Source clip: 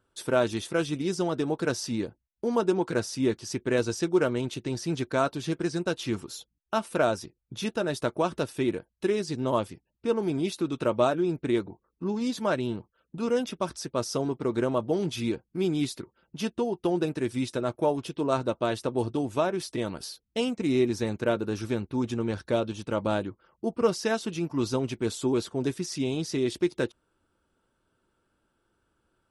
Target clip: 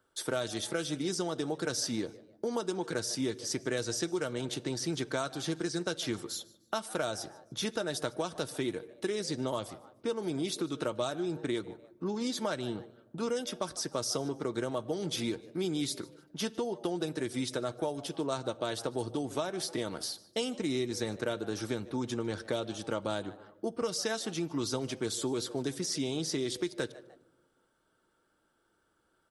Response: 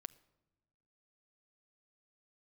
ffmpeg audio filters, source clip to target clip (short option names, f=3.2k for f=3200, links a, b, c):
-filter_complex "[0:a]lowshelf=f=210:g=-11,asplit=3[a][b][c];[b]adelay=150,afreqshift=110,volume=-23.5dB[d];[c]adelay=300,afreqshift=220,volume=-33.7dB[e];[a][d][e]amix=inputs=3:normalize=0,asplit=2[f][g];[1:a]atrim=start_sample=2205[h];[g][h]afir=irnorm=-1:irlink=0,volume=12dB[i];[f][i]amix=inputs=2:normalize=0,acrossover=split=130|3000[j][k][l];[k]acompressor=threshold=-23dB:ratio=6[m];[j][m][l]amix=inputs=3:normalize=0,equalizer=f=2.6k:t=o:w=0.22:g=-8.5,bandreject=f=1k:w=13,volume=-7.5dB"